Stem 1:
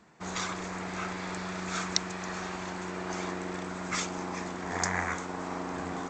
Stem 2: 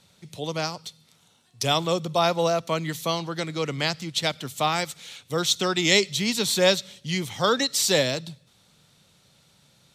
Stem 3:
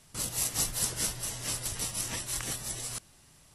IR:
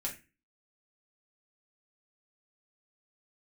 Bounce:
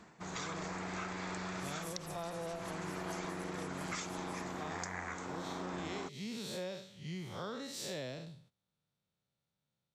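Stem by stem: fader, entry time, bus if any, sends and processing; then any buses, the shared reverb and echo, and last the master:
+2.5 dB, 0.00 s, no send, automatic gain control gain up to 14.5 dB; automatic ducking −12 dB, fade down 0.25 s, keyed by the second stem
−7.5 dB, 0.00 s, no send, spectrum smeared in time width 145 ms; high-shelf EQ 2,500 Hz −9 dB; noise gate −55 dBFS, range −17 dB
−6.0 dB, 1.45 s, no send, parametric band 11,000 Hz −4.5 dB; phaser with staggered stages 4.1 Hz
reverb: not used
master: downward compressor 5 to 1, threshold −39 dBFS, peak gain reduction 14.5 dB

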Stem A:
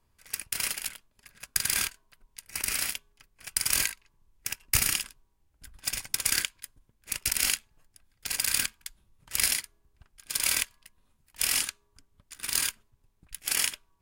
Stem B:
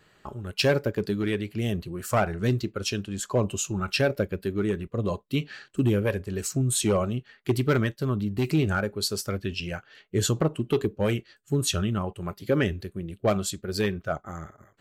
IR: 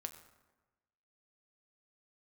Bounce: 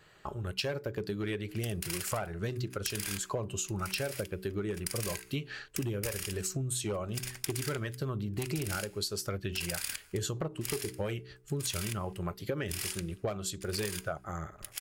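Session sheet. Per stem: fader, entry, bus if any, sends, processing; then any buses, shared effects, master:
−7.0 dB, 1.30 s, send −4 dB, no processing
+0.5 dB, 0.00 s, no send, no processing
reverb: on, RT60 1.2 s, pre-delay 6 ms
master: parametric band 240 Hz −8 dB 0.46 octaves; hum removal 62.64 Hz, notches 7; downward compressor 10 to 1, threshold −31 dBFS, peak gain reduction 14 dB

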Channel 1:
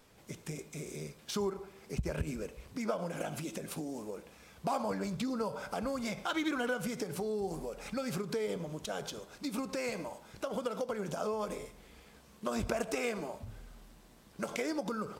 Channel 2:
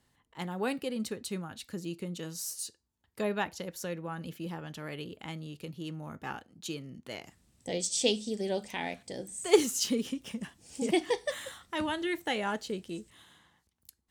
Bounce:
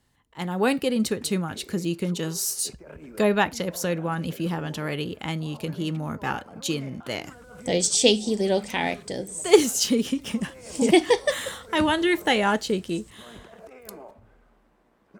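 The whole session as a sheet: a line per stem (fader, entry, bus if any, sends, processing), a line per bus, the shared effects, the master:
−12.5 dB, 0.75 s, no send, three-way crossover with the lows and the highs turned down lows −13 dB, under 240 Hz, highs −17 dB, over 2,200 Hz; compressor whose output falls as the input rises −41 dBFS, ratio −1
+2.0 dB, 0.00 s, no send, no processing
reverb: not used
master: low-shelf EQ 78 Hz +5.5 dB; automatic gain control gain up to 8.5 dB

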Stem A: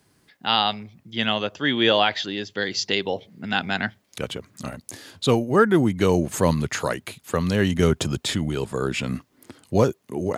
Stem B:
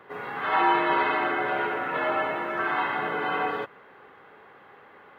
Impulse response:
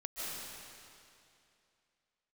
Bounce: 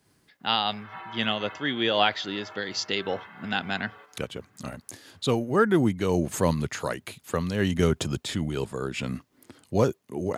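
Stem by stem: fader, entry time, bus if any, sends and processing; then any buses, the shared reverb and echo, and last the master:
−1.5 dB, 0.00 s, no send, no processing
−14.0 dB, 0.40 s, send −13 dB, high-pass filter 1,100 Hz 6 dB per octave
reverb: on, RT60 2.6 s, pre-delay 110 ms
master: amplitude modulation by smooth noise, depth 65%

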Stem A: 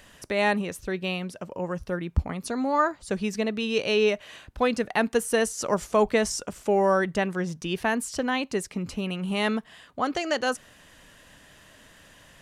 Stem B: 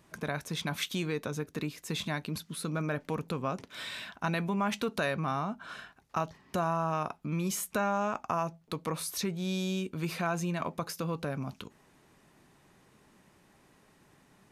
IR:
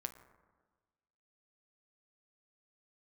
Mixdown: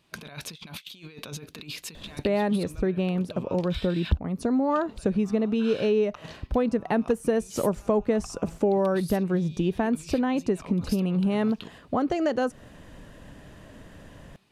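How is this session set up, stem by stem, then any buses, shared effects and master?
+3.0 dB, 1.95 s, no send, tilt shelving filter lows +9 dB
−1.5 dB, 0.00 s, muted 0:04.18–0:04.70, no send, noise gate −55 dBFS, range −11 dB; flat-topped bell 3,400 Hz +9 dB 1.2 octaves; compressor whose output falls as the input rises −38 dBFS, ratio −0.5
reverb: not used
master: downward compressor 3 to 1, threshold −23 dBFS, peak gain reduction 14 dB

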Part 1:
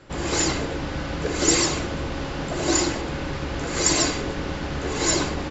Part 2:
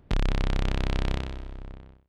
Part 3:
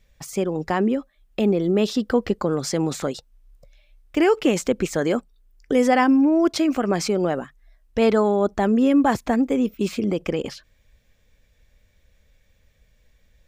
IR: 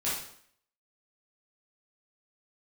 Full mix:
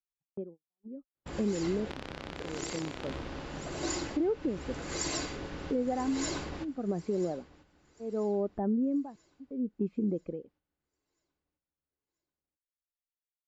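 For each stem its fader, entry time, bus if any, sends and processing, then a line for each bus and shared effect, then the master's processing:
−12.0 dB, 1.15 s, bus A, no send, echo send −18.5 dB, no processing
+1.5 dB, 1.80 s, no bus, no send, no echo send, high-pass filter 310 Hz 12 dB per octave
−1.5 dB, 0.00 s, bus A, no send, no echo send, low-pass filter 1,000 Hz 6 dB per octave; amplitude tremolo 0.7 Hz, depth 95%; every bin expanded away from the loudest bin 1.5 to 1
bus A: 0.0 dB, noise gate −47 dBFS, range −35 dB; downward compressor 10 to 1, threshold −26 dBFS, peak gain reduction 11.5 dB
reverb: not used
echo: repeating echo 987 ms, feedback 41%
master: high-shelf EQ 12,000 Hz −10 dB; brickwall limiter −22 dBFS, peak gain reduction 11.5 dB

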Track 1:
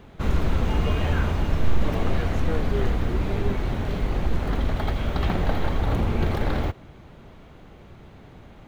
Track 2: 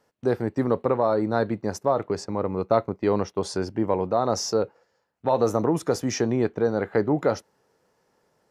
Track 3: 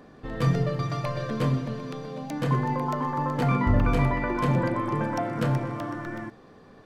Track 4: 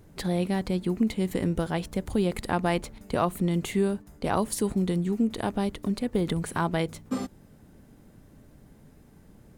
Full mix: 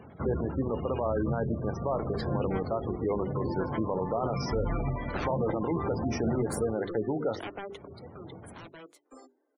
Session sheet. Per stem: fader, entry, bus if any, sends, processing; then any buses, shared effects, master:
+1.0 dB, 0.00 s, no send, high-pass filter 79 Hz 24 dB per octave; automatic ducking −9 dB, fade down 0.55 s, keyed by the second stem
−4.5 dB, 0.00 s, no send, low-pass filter 5,000 Hz 24 dB per octave
−11.0 dB, 0.85 s, no send, low-shelf EQ 210 Hz +4 dB
0:07.70 −2.5 dB → 0:08.03 −14 dB, 2.00 s, no send, Butterworth high-pass 280 Hz 72 dB per octave; wave folding −27 dBFS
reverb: not used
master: gate on every frequency bin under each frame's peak −20 dB strong; mains-hum notches 50/100/150/200/250/300/350/400 Hz; brickwall limiter −20 dBFS, peak gain reduction 9 dB

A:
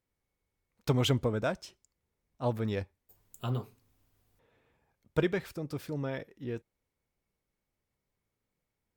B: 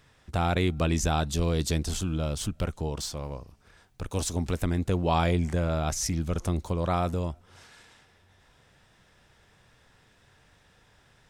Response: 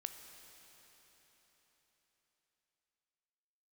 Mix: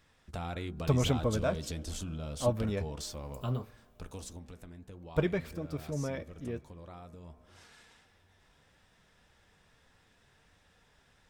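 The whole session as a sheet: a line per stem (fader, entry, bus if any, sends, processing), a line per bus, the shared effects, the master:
−1.0 dB, 0.00 s, send −10.5 dB, low-shelf EQ 130 Hz +11.5 dB; hollow resonant body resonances 600/1,100/2,300 Hz, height 8 dB
0:03.88 −1.5 dB → 0:04.55 −12 dB → 0:07.22 −12 dB → 0:07.50 −0.5 dB, 0.00 s, no send, hum removal 61.92 Hz, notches 27; downward compressor 6 to 1, threshold −29 dBFS, peak gain reduction 9 dB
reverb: on, RT60 4.4 s, pre-delay 13 ms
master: flanger 1.6 Hz, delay 3.5 ms, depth 1.3 ms, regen −61%

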